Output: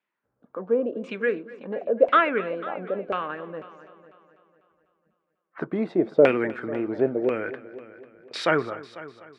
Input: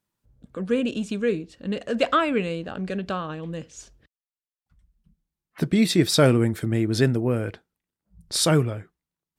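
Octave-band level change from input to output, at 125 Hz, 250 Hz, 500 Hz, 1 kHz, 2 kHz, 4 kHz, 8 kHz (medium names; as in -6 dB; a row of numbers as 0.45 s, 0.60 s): -15.5 dB, -5.5 dB, +2.0 dB, +2.5 dB, +2.0 dB, -11.0 dB, under -20 dB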